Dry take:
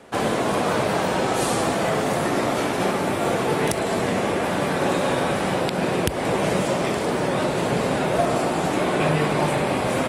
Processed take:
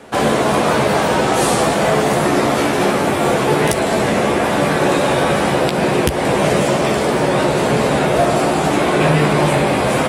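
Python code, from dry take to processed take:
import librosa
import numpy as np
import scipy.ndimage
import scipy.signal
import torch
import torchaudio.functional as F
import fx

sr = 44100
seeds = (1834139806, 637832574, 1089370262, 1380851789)

p1 = np.clip(x, -10.0 ** (-17.5 / 20.0), 10.0 ** (-17.5 / 20.0))
p2 = x + (p1 * librosa.db_to_amplitude(-6.0))
p3 = fx.doubler(p2, sr, ms=14.0, db=-7.0)
y = p3 * librosa.db_to_amplitude(3.0)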